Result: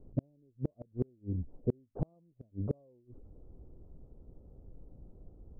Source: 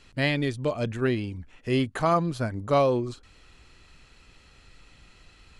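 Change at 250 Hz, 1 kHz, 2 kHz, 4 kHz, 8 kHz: -11.5 dB, -31.0 dB, under -40 dB, under -40 dB, under -30 dB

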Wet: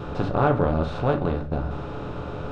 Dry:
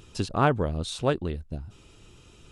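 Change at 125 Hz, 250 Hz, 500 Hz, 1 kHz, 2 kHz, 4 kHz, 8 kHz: +4.5 dB, +4.5 dB, +4.5 dB, +3.0 dB, +1.0 dB, -6.0 dB, under -15 dB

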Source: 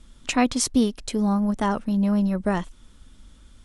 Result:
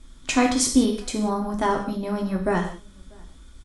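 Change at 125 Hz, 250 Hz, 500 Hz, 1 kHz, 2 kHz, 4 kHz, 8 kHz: -3.5 dB, -1.5 dB, +3.0 dB, +2.0 dB, +2.5 dB, +2.0 dB, +3.0 dB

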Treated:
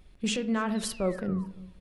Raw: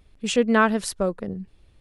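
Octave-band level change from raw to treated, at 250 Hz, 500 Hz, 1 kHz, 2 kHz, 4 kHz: -5.0 dB, -9.0 dB, -11.0 dB, -12.0 dB, -4.0 dB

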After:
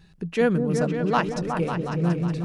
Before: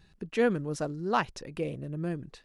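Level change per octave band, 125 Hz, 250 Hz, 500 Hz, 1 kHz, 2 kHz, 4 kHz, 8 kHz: +11.0 dB, +9.0 dB, +6.0 dB, +5.5 dB, +5.5 dB, +5.0 dB, +4.5 dB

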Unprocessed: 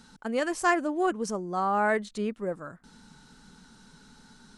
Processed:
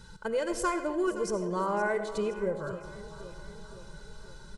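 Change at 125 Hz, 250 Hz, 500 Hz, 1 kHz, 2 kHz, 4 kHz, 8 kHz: +1.0 dB, -3.0 dB, 0.0 dB, -5.0 dB, -5.0 dB, -2.0 dB, -1.0 dB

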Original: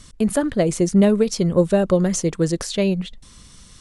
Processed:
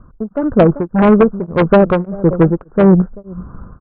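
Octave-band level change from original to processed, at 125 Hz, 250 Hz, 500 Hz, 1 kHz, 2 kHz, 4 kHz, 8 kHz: +7.0 dB, +6.5 dB, +6.5 dB, +13.0 dB, +8.0 dB, no reading, under -40 dB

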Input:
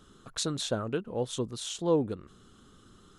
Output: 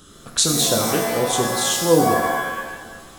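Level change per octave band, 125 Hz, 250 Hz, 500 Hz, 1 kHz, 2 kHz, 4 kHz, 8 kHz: +9.0 dB, +10.5 dB, +11.5 dB, +20.0 dB, +21.5 dB, +14.5 dB, +19.0 dB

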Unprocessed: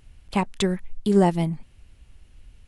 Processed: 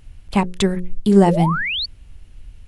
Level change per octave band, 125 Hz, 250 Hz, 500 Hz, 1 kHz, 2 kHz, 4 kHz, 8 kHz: +6.5 dB, +6.5 dB, +5.0 dB, +6.5 dB, +12.0 dB, +11.0 dB, +4.0 dB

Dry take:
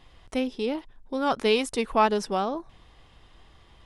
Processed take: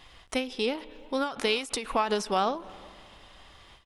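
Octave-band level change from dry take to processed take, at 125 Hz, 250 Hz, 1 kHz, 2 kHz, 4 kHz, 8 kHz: no reading, -5.0 dB, -3.0 dB, -0.5 dB, +1.0 dB, +2.5 dB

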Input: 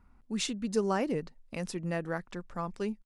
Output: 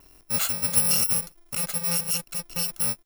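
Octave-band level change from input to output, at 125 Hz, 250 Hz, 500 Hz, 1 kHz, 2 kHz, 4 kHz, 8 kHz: +2.0 dB, -5.0 dB, -7.5 dB, -1.5 dB, +4.5 dB, +11.0 dB, +19.5 dB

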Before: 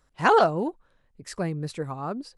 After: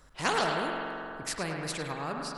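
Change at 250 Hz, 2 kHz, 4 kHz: -6.5 dB, -2.5 dB, +3.5 dB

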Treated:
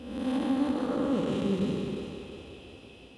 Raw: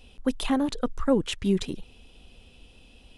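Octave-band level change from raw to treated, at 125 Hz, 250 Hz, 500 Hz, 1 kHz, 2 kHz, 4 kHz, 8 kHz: -1.0 dB, -1.0 dB, -2.5 dB, -3.0 dB, -4.0 dB, -7.0 dB, under -10 dB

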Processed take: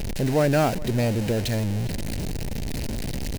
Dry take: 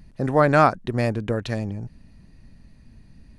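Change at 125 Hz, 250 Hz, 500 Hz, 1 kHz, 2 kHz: +2.0 dB, +1.0 dB, -2.0 dB, -8.0 dB, -5.0 dB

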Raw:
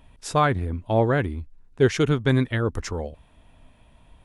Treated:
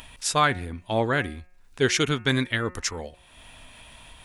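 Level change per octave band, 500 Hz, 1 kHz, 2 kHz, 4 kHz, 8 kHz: -4.0 dB, -0.5 dB, +3.5 dB, +7.5 dB, +8.5 dB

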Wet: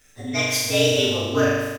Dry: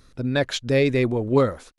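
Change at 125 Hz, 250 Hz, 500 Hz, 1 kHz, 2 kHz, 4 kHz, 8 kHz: -2.5 dB, -1.5 dB, 0.0 dB, 0.0 dB, +5.0 dB, +10.0 dB, +14.0 dB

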